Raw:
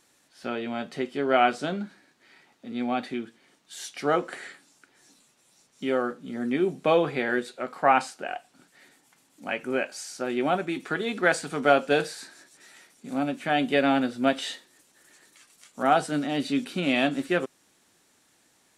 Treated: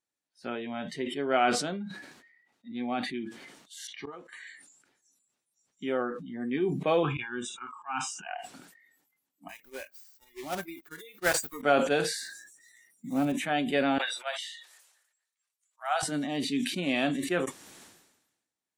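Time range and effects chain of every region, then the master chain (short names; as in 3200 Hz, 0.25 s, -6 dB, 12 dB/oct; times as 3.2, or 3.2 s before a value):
3.87–4.47 notch 5100 Hz, Q 10 + low-pass opened by the level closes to 2500 Hz, open at -24 dBFS + flipped gate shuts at -20 dBFS, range -28 dB
7.03–8.27 auto swell 0.209 s + fixed phaser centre 2900 Hz, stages 8
9.48–11.63 block floating point 3-bit + upward expander 2.5:1, over -46 dBFS
12.18–13.33 block floating point 5-bit + low shelf 420 Hz +7 dB
13.98–16.03 Bessel high-pass 870 Hz, order 8 + upward expander, over -36 dBFS
whole clip: spectral noise reduction 23 dB; sustainer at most 56 dB/s; gain -4.5 dB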